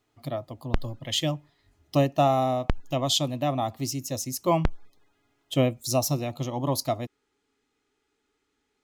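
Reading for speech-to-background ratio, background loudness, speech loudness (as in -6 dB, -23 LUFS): 7.5 dB, -35.0 LUFS, -27.5 LUFS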